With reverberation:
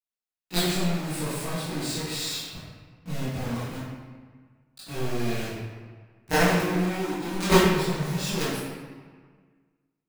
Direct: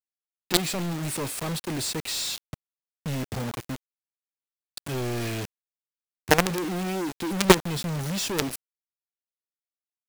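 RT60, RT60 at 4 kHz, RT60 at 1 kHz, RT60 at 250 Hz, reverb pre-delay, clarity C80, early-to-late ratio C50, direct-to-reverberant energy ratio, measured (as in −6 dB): 1.6 s, 1.0 s, 1.6 s, 1.7 s, 16 ms, 0.0 dB, −3.0 dB, −16.0 dB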